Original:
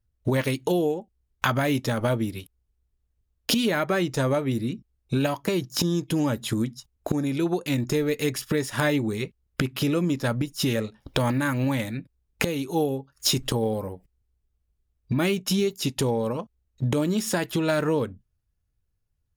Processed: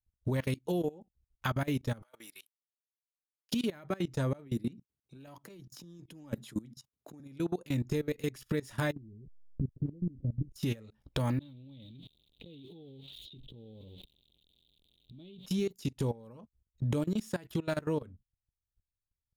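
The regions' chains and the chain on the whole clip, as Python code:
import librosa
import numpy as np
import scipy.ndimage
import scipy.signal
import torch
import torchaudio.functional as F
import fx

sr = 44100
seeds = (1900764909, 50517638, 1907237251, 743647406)

y = fx.chain(x, sr, fx.highpass(hz=1300.0, slope=12),
    fx.peak_eq(hz=3100.0, db=-5.0, octaves=1.6),
    fx.over_compress(threshold_db=-44.0, ratio=-1.0), at=(2.02, 3.52))
y = fx.chain(y, sr, fx.highpass(hz=130.0, slope=24),
    fx.over_compress(threshold_db=-26.0, ratio=-0.5), at=(4.33, 7.2))
y = fx.chain(y, sr, fx.delta_hold(step_db=-37.5),
    fx.gaussian_blur(sigma=24.0),
    fx.low_shelf(hz=75.0, db=6.0), at=(8.92, 10.52))
y = fx.chain(y, sr, fx.crossing_spikes(level_db=-22.5),
    fx.curve_eq(hz=(390.0, 630.0, 1600.0, 3700.0, 5200.0), db=(0, -7, -29, 10, -29)),
    fx.over_compress(threshold_db=-34.0, ratio=-1.0), at=(11.39, 15.46))
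y = fx.low_shelf(y, sr, hz=190.0, db=9.0)
y = fx.level_steps(y, sr, step_db=21)
y = y * librosa.db_to_amplitude(-8.5)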